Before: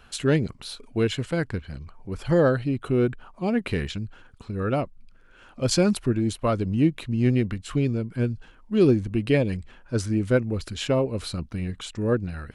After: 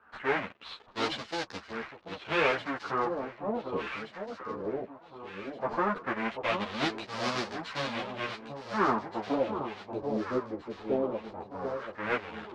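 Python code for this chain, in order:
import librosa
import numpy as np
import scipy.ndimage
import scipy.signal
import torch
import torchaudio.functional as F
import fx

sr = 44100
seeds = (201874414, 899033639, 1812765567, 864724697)

p1 = fx.halfwave_hold(x, sr)
p2 = fx.weighting(p1, sr, curve='A')
p3 = fx.sample_hold(p2, sr, seeds[0], rate_hz=5200.0, jitter_pct=0)
p4 = p2 + (p3 * 10.0 ** (-6.5 / 20.0))
p5 = fx.filter_lfo_lowpass(p4, sr, shape='sine', hz=0.17, low_hz=360.0, high_hz=4800.0, q=2.2)
p6 = p5 + fx.echo_alternate(p5, sr, ms=737, hz=990.0, feedback_pct=66, wet_db=-6.5, dry=0)
p7 = fx.ensemble(p6, sr)
y = p7 * 10.0 ** (-9.0 / 20.0)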